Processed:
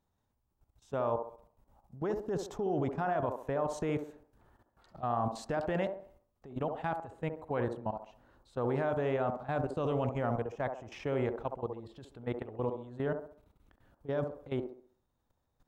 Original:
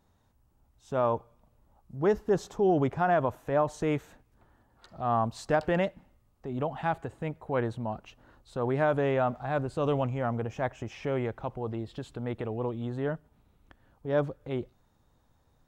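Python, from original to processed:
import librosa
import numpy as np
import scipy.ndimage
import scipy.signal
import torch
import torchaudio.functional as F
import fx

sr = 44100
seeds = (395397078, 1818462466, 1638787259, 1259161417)

y = fx.level_steps(x, sr, step_db=16)
y = fx.echo_wet_bandpass(y, sr, ms=67, feedback_pct=38, hz=550.0, wet_db=-4.5)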